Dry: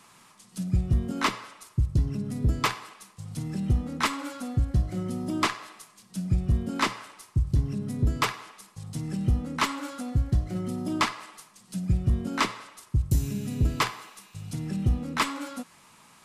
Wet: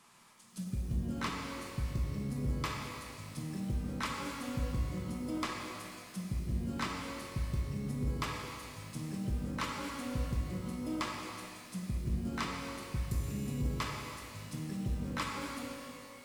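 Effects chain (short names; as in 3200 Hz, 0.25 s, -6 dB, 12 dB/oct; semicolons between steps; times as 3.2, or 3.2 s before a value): short-mantissa float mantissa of 4-bit; compressor, threshold -26 dBFS, peak gain reduction 8.5 dB; shimmer reverb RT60 2.3 s, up +12 st, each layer -8 dB, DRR 1 dB; gain -8 dB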